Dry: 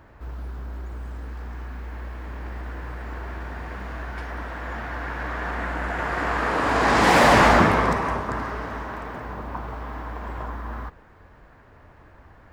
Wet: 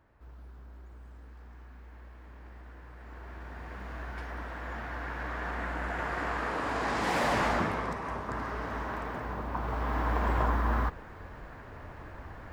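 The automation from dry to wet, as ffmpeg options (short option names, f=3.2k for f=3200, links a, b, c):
-af "volume=11.5dB,afade=t=in:st=2.92:d=1.12:silence=0.375837,afade=t=out:st=5.97:d=1.03:silence=0.473151,afade=t=in:st=7.98:d=0.93:silence=0.298538,afade=t=in:st=9.53:d=0.62:silence=0.421697"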